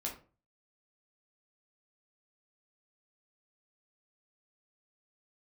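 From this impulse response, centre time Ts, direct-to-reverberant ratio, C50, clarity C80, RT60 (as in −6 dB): 21 ms, −2.0 dB, 9.0 dB, 14.5 dB, 0.35 s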